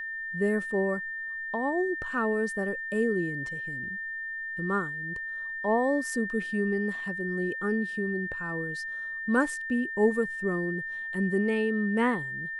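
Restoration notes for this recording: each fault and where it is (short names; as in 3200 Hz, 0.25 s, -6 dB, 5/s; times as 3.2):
tone 1800 Hz -33 dBFS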